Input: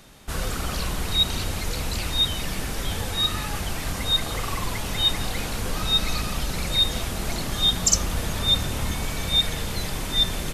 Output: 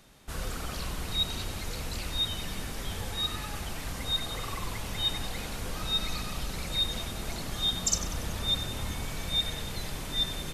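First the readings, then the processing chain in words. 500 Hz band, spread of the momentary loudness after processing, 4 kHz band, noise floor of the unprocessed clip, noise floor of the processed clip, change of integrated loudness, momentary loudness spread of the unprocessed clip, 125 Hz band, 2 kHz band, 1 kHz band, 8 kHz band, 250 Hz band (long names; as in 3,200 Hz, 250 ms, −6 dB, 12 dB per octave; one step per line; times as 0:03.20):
−7.5 dB, 8 LU, −7.5 dB, −30 dBFS, −38 dBFS, −7.5 dB, 8 LU, −7.5 dB, −7.5 dB, −7.5 dB, −8.0 dB, −7.5 dB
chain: bucket-brigade delay 94 ms, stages 4,096, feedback 60%, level −12 dB
level −8 dB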